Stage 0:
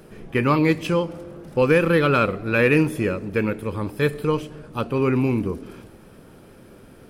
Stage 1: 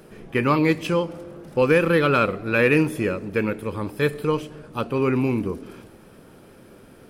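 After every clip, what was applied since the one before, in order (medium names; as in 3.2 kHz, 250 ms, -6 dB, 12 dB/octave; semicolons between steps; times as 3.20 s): bass shelf 130 Hz -5 dB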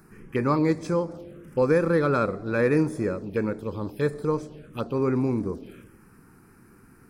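touch-sensitive phaser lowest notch 510 Hz, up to 2.9 kHz, full sweep at -22 dBFS; trim -2.5 dB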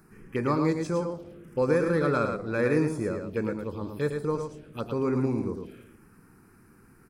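dynamic bell 7.7 kHz, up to +4 dB, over -51 dBFS, Q 0.91; on a send: delay 109 ms -6 dB; on the sum: trim -3.5 dB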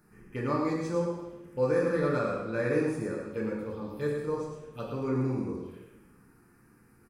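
speakerphone echo 170 ms, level -16 dB; two-slope reverb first 0.78 s, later 2.5 s, from -24 dB, DRR -2 dB; trim -7.5 dB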